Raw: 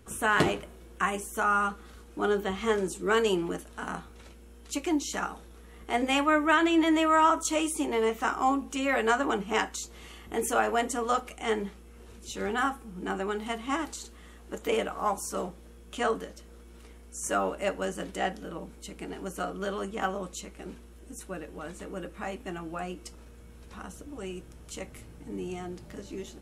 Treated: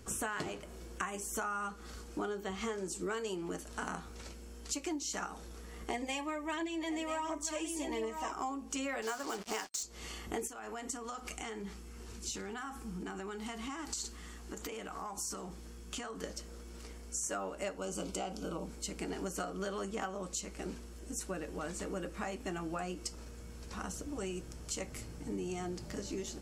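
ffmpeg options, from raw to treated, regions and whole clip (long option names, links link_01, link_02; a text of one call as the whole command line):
ffmpeg -i in.wav -filter_complex "[0:a]asettb=1/sr,asplit=3[link_01][link_02][link_03];[link_01]atrim=end=5.904[link_04];[link_02]atrim=start=5.9:end=8.32,asetpts=PTS-STARTPTS,afade=type=in:duration=0.004:curve=qsin,afade=type=out:start_time=2.416:duration=0.004:curve=qsin,aecho=1:1:985:0.335,atrim=end_sample=106722,aphaser=in_gain=1:out_gain=1:delay=2.8:decay=0.41:speed=1.4:type=triangular,asuperstop=centerf=1400:order=4:qfactor=3.3[link_05];[link_03]atrim=start=8.316[link_06];[link_04][link_05]acrossfade=duration=0.004:curve1=hsin:curve2=qsin[link_07];[link_07][link_06]acrossfade=duration=0.004:curve1=qsin:curve2=hsin,asettb=1/sr,asplit=3[link_08][link_09][link_10];[link_08]atrim=end=9.024[link_11];[link_09]atrim=start=9.02:end=9.83,asetpts=PTS-STARTPTS,afade=type=in:duration=0.004:curve=qsin,afade=type=out:start_time=0.806:duration=0.004:curve=qsin,highpass=frequency=160:poles=1,acrusher=bits=5:mix=0:aa=0.5,bass=frequency=250:gain=-3,treble=frequency=4000:gain=4[link_12];[link_10]atrim=start=9.826[link_13];[link_11][link_12]acrossfade=duration=0.004:curve1=hsin:curve2=qsin[link_14];[link_14][link_13]acrossfade=duration=0.004:curve1=qsin:curve2=hsin,asettb=1/sr,asplit=3[link_15][link_16][link_17];[link_15]atrim=end=10.474[link_18];[link_16]atrim=start=10.47:end=16.24,asetpts=PTS-STARTPTS,afade=type=in:duration=0.004:curve=qsin,afade=type=out:start_time=5.766:duration=0.004:curve=qsin,acompressor=threshold=-38dB:ratio=16:attack=3.2:release=140:knee=1:detection=peak,equalizer=frequency=560:width_type=o:width=0.5:gain=-7.5[link_19];[link_17]atrim=start=16.236[link_20];[link_18][link_19]acrossfade=duration=0.004:curve1=hsin:curve2=qsin[link_21];[link_21][link_20]acrossfade=duration=0.004:curve1=qsin:curve2=hsin,asettb=1/sr,asplit=3[link_22][link_23][link_24];[link_22]atrim=end=17.774[link_25];[link_23]atrim=start=17.77:end=18.64,asetpts=PTS-STARTPTS,afade=type=in:duration=0.004:curve=qsin,afade=type=out:start_time=0.866:duration=0.004:curve=qsin,acompressor=threshold=-32dB:ratio=2:attack=3.2:release=140:knee=1:detection=peak,asuperstop=centerf=1800:order=4:qfactor=3.1[link_26];[link_24]atrim=start=18.636[link_27];[link_25][link_26]acrossfade=duration=0.004:curve1=hsin:curve2=qsin[link_28];[link_28][link_27]acrossfade=duration=0.004:curve1=qsin:curve2=hsin,superequalizer=14b=2.24:15b=2,acompressor=threshold=-36dB:ratio=12,volume=1.5dB" out.wav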